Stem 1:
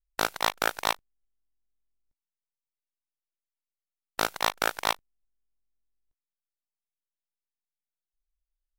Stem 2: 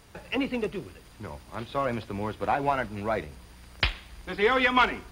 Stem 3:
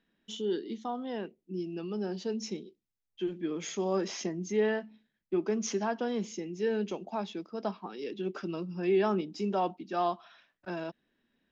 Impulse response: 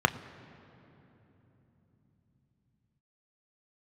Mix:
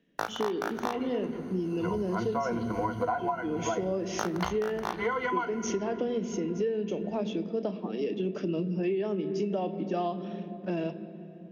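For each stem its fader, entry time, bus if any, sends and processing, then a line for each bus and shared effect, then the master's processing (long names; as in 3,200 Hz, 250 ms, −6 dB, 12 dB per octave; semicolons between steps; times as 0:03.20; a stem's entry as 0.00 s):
−7.5 dB, 0.00 s, send −8.5 dB, no processing
0:01.38 −13 dB → 0:01.94 −1.5 dB → 0:03.17 −1.5 dB → 0:03.55 −8.5 dB, 0.60 s, send −9.5 dB, EQ curve with evenly spaced ripples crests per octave 1.9, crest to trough 18 dB
−1.5 dB, 0.00 s, send −3.5 dB, flat-topped bell 1,100 Hz −14.5 dB 1.3 octaves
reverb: on, RT60 3.5 s, pre-delay 3 ms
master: downward compressor 16 to 1, threshold −26 dBFS, peak gain reduction 17.5 dB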